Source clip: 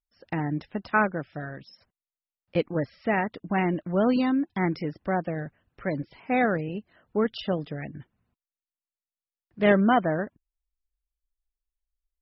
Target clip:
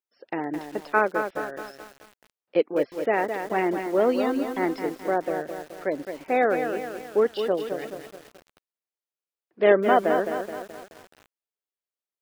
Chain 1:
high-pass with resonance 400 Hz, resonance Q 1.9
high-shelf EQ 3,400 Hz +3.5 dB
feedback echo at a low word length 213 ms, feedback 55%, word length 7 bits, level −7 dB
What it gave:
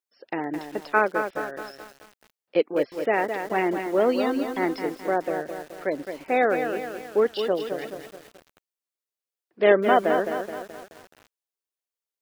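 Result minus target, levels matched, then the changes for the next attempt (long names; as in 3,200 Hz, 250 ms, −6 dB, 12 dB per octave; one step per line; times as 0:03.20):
4,000 Hz band +2.5 dB
change: high-shelf EQ 3,400 Hz −3.5 dB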